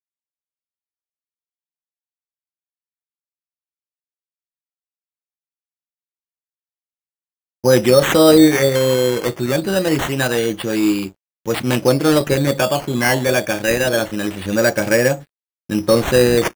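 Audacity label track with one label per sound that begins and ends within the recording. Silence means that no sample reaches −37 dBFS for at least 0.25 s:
7.640000	11.110000	sound
11.460000	15.230000	sound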